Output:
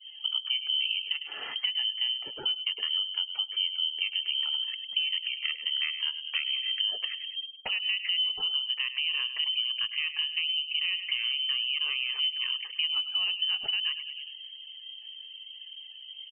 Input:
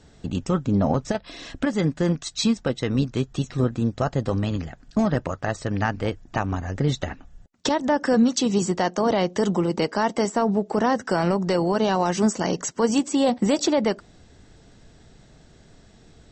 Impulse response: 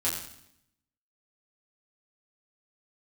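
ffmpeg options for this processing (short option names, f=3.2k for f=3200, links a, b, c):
-filter_complex "[0:a]asetrate=31183,aresample=44100,atempo=1.41421,asplit=2[a][b];[b]adelay=102,lowpass=f=1.8k:p=1,volume=-12dB,asplit=2[c][d];[d]adelay=102,lowpass=f=1.8k:p=1,volume=0.47,asplit=2[e][f];[f]adelay=102,lowpass=f=1.8k:p=1,volume=0.47,asplit=2[g][h];[h]adelay=102,lowpass=f=1.8k:p=1,volume=0.47,asplit=2[i][j];[j]adelay=102,lowpass=f=1.8k:p=1,volume=0.47[k];[c][e][g][i][k]amix=inputs=5:normalize=0[l];[a][l]amix=inputs=2:normalize=0,adynamicequalizer=threshold=0.0178:dfrequency=550:dqfactor=1.4:tfrequency=550:tqfactor=1.4:attack=5:release=100:ratio=0.375:range=1.5:mode=cutabove:tftype=bell,acompressor=threshold=-36dB:ratio=4,lowpass=f=2.7k:t=q:w=0.5098,lowpass=f=2.7k:t=q:w=0.6013,lowpass=f=2.7k:t=q:w=0.9,lowpass=f=2.7k:t=q:w=2.563,afreqshift=-3200,afftdn=nr=27:nf=-55,highshelf=f=2.1k:g=9.5"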